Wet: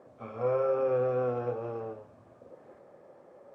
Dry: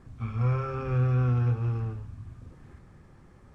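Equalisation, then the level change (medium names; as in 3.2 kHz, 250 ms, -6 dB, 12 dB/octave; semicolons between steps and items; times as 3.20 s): resonant high-pass 570 Hz, resonance Q 4.9; tilt shelf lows +9 dB, about 770 Hz; 0.0 dB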